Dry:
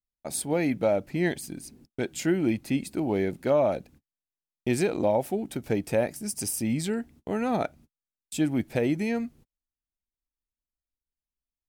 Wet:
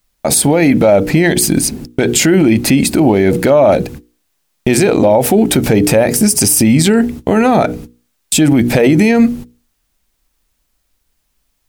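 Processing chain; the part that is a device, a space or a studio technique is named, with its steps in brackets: notches 60/120/180/240/300/360/420/480 Hz; loud club master (compressor 3:1, threshold -27 dBFS, peak gain reduction 6.5 dB; hard clip -19.5 dBFS, distortion -41 dB; maximiser +29.5 dB); gain -1 dB

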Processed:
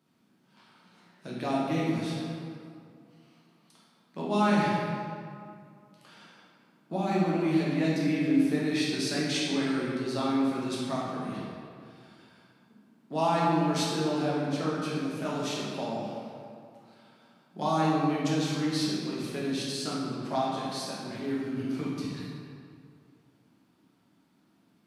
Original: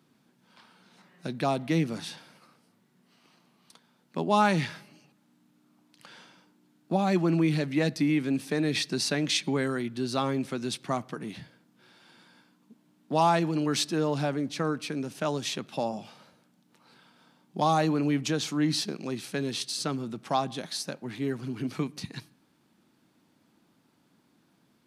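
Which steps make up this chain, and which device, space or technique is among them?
stairwell (reverb RT60 2.3 s, pre-delay 7 ms, DRR -6.5 dB); gain -8.5 dB

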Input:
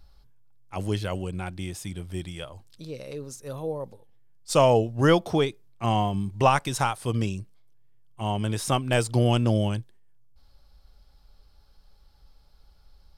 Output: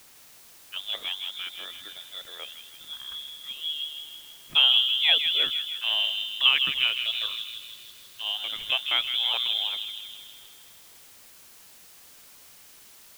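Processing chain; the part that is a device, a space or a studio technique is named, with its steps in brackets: scrambled radio voice (BPF 360–2800 Hz; inverted band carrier 3800 Hz; white noise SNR 22 dB); 6.84–8.22 thirty-one-band EQ 100 Hz +7 dB, 800 Hz -7 dB, 4000 Hz +8 dB; thin delay 0.16 s, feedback 58%, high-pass 2200 Hz, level -5 dB

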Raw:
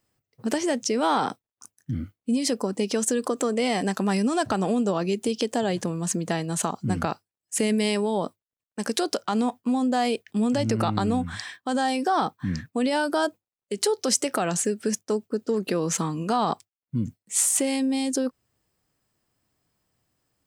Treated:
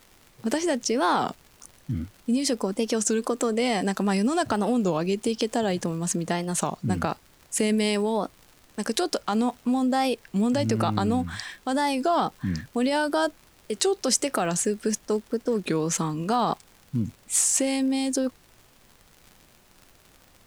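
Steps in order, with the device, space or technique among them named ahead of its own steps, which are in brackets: warped LP (record warp 33 1/3 rpm, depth 160 cents; crackle 86/s -38 dBFS; pink noise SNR 31 dB)

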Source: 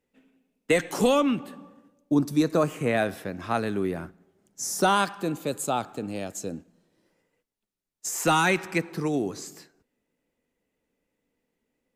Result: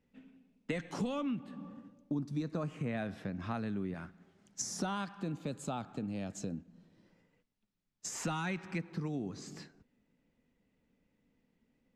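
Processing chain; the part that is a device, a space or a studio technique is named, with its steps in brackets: jukebox (LPF 5300 Hz 12 dB/oct; resonant low shelf 280 Hz +6.5 dB, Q 1.5; compressor 3:1, threshold -39 dBFS, peak gain reduction 19 dB); 3.94–4.62 tilt shelf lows -6.5 dB, about 650 Hz

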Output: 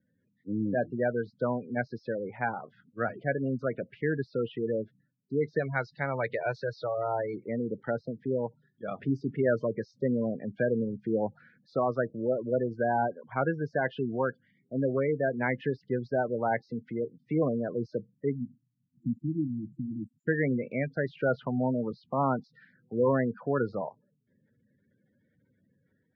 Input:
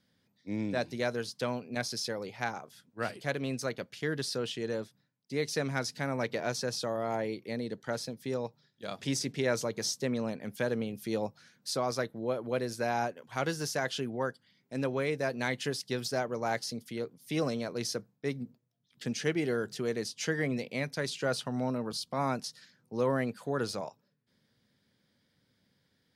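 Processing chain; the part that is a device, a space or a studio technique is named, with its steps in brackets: 5.59–7.34 graphic EQ 250/4000/8000 Hz -10/+8/+8 dB; spectral gate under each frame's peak -15 dB strong; HPF 61 Hz 12 dB/oct; 18.45–20.28 spectral delete 330–6900 Hz; action camera in a waterproof case (LPF 2100 Hz 24 dB/oct; AGC gain up to 4.5 dB; AAC 64 kbps 32000 Hz)

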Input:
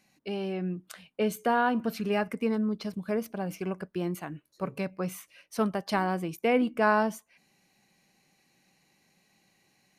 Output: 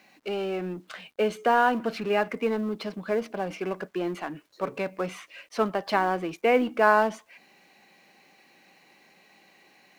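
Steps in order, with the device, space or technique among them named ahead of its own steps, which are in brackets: phone line with mismatched companding (BPF 320–3500 Hz; G.711 law mismatch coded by mu); gain +4 dB

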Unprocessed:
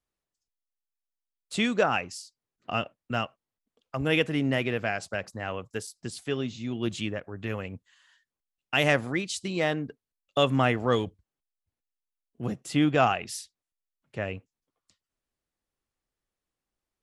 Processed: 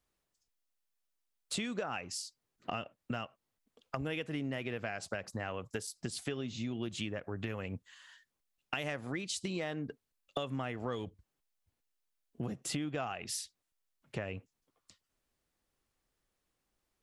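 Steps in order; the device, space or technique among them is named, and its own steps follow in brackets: serial compression, peaks first (compressor 5:1, threshold -34 dBFS, peak gain reduction 15.5 dB; compressor 2:1, threshold -43 dBFS, peak gain reduction 7.5 dB); gain +5 dB

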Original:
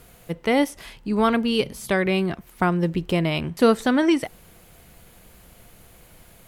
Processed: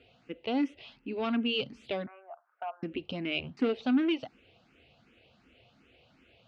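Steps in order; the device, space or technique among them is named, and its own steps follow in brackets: 2.06–2.83 elliptic band-pass 630–1500 Hz, stop band 60 dB; barber-pole phaser into a guitar amplifier (endless phaser +2.7 Hz; soft clip -17.5 dBFS, distortion -13 dB; speaker cabinet 100–4300 Hz, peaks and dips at 170 Hz -9 dB, 260 Hz +7 dB, 1000 Hz -8 dB, 1800 Hz -5 dB, 2700 Hz +9 dB); gain -6.5 dB

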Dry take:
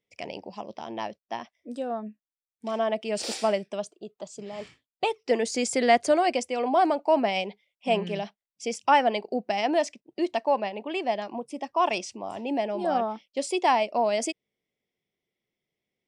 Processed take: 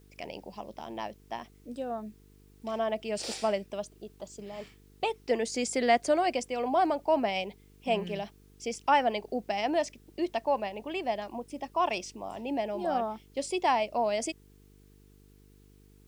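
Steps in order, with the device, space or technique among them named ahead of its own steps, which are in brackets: video cassette with head-switching buzz (buzz 50 Hz, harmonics 9, -54 dBFS -4 dB/oct; white noise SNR 38 dB); gain -4 dB

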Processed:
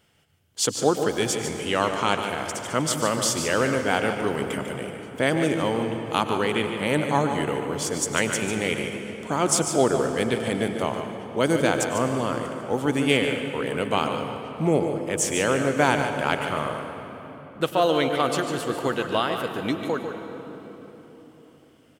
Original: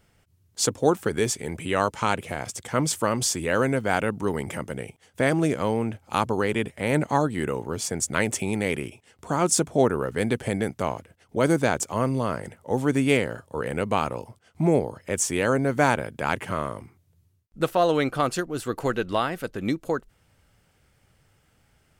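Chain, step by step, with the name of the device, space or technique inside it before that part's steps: PA in a hall (HPF 150 Hz 6 dB/oct; bell 3100 Hz +8 dB 0.36 oct; echo 0.147 s -9 dB; reverb RT60 4.0 s, pre-delay 91 ms, DRR 7 dB)

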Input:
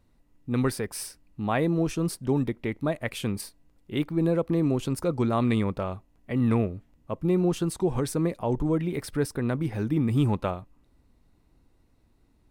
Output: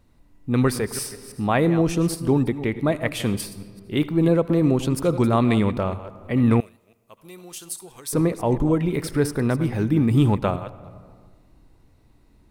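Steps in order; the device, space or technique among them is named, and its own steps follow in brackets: reverse delay 0.165 s, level -13 dB; compressed reverb return (on a send at -3 dB: reverb RT60 1.1 s, pre-delay 66 ms + compressor 4:1, threshold -41 dBFS, peak gain reduction 19.5 dB); 6.6–8.13 on the sum: pre-emphasis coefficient 0.97; gain +5.5 dB

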